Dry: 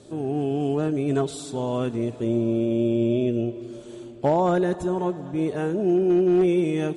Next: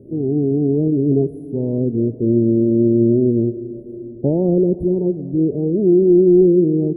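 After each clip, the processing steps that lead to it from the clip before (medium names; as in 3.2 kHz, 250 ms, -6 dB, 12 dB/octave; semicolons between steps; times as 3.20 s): inverse Chebyshev band-stop 1.3–7.5 kHz, stop band 60 dB; trim +8.5 dB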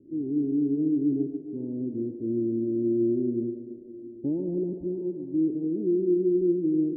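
cascade formant filter u; band-stop 730 Hz, Q 12; thinning echo 141 ms, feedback 81%, high-pass 310 Hz, level -7 dB; trim -5.5 dB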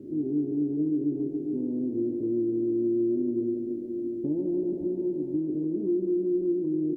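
spectral levelling over time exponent 0.6; compression 3:1, threshold -24 dBFS, peak gain reduction 5 dB; doubling 20 ms -6 dB; trim -2.5 dB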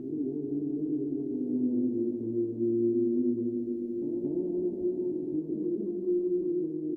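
reverse echo 224 ms -4.5 dB; on a send at -11 dB: reverberation RT60 0.20 s, pre-delay 3 ms; on the sum: trim -3.5 dB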